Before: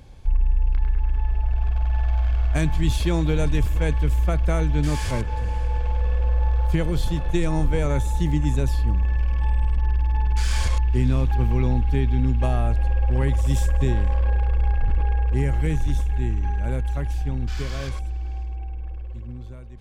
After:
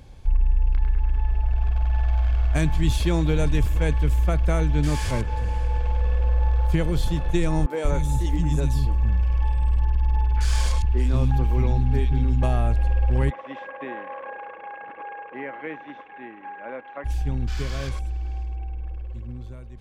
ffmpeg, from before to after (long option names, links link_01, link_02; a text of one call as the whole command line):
ffmpeg -i in.wav -filter_complex "[0:a]asettb=1/sr,asplit=3[link_01][link_02][link_03];[link_01]atrim=end=7.664[link_04];[link_02]atrim=start=7.66:end=12.43,asetpts=PTS-STARTPTS,afade=type=in:duration=0.004:curve=qsin,afade=type=out:start_time=4.766:duration=0.004:curve=qsin,acrossover=split=250|2200[link_05][link_06][link_07];[link_07]adelay=40[link_08];[link_05]adelay=180[link_09];[link_09][link_06][link_08]amix=inputs=3:normalize=0,atrim=end_sample=210357[link_10];[link_03]atrim=start=12.426[link_11];[link_04][link_10]acrossfade=duration=0.004:curve1=hsin:curve2=qsin[link_12];[link_12][link_11]acrossfade=duration=0.004:curve1=qsin:curve2=hsin,asplit=3[link_13][link_14][link_15];[link_13]afade=type=out:start_time=13.29:duration=0.02[link_16];[link_14]highpass=frequency=320:width=0.5412,highpass=frequency=320:width=1.3066,equalizer=frequency=390:width_type=q:width=4:gain=-9,equalizer=frequency=570:width_type=q:width=4:gain=3,equalizer=frequency=1100:width_type=q:width=4:gain=5,equalizer=frequency=1900:width_type=q:width=4:gain=3,lowpass=frequency=2500:width=0.5412,lowpass=frequency=2500:width=1.3066,afade=type=in:start_time=13.29:duration=0.02,afade=type=out:start_time=17.04:duration=0.02[link_17];[link_15]afade=type=in:start_time=17.04:duration=0.02[link_18];[link_16][link_17][link_18]amix=inputs=3:normalize=0" out.wav